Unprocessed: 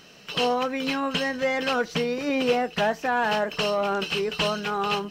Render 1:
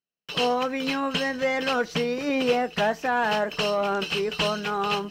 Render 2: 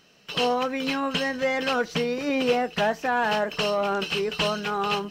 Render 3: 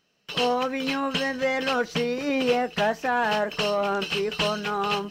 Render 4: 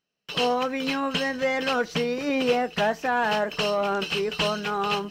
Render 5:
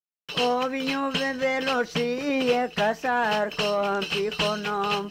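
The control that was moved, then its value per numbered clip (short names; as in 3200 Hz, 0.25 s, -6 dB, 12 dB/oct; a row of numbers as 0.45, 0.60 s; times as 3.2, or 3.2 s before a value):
gate, range: -46, -8, -20, -33, -59 dB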